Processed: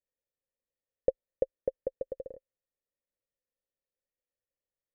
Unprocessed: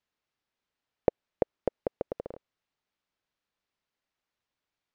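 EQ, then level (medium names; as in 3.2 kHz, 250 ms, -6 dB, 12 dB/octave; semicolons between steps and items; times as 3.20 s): cascade formant filter e; tilt EQ -3.5 dB/octave; 0.0 dB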